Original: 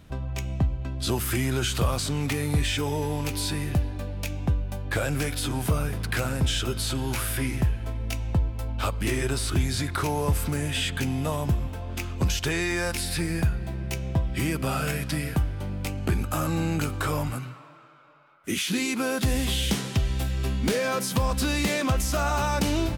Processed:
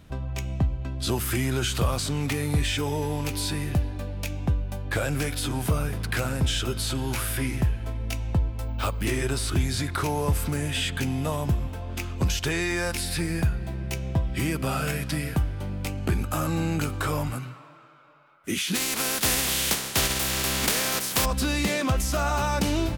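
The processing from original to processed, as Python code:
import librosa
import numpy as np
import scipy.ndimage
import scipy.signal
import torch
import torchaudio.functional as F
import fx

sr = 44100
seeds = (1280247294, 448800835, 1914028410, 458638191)

y = fx.resample_bad(x, sr, factor=2, down='none', up='hold', at=(8.6, 9.05))
y = fx.spec_flatten(y, sr, power=0.33, at=(18.74, 21.24), fade=0.02)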